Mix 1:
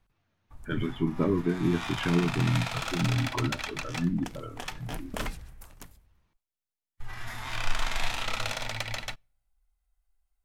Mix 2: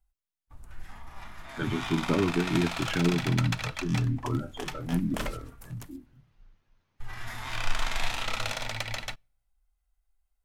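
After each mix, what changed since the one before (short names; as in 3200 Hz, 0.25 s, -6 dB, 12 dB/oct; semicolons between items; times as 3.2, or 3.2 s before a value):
speech: entry +0.90 s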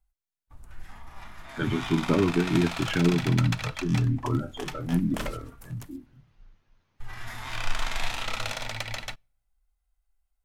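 speech +3.0 dB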